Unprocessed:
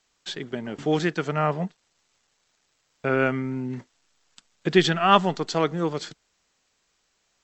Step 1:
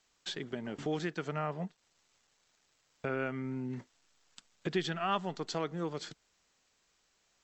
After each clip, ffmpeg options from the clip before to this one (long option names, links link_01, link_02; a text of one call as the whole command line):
ffmpeg -i in.wav -af "acompressor=threshold=-35dB:ratio=2,volume=-3dB" out.wav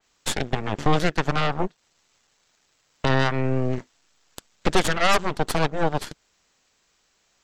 ffmpeg -i in.wav -af "aeval=exprs='0.133*(cos(1*acos(clip(val(0)/0.133,-1,1)))-cos(1*PI/2))+0.0668*(cos(8*acos(clip(val(0)/0.133,-1,1)))-cos(8*PI/2))':channel_layout=same,adynamicequalizer=threshold=0.00708:dfrequency=3100:dqfactor=0.7:tfrequency=3100:tqfactor=0.7:attack=5:release=100:ratio=0.375:range=2:mode=cutabove:tftype=highshelf,volume=7dB" out.wav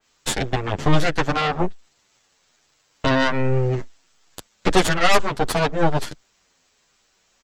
ffmpeg -i in.wav -filter_complex "[0:a]asplit=2[link_01][link_02];[link_02]adelay=9.2,afreqshift=-1.2[link_03];[link_01][link_03]amix=inputs=2:normalize=1,volume=6dB" out.wav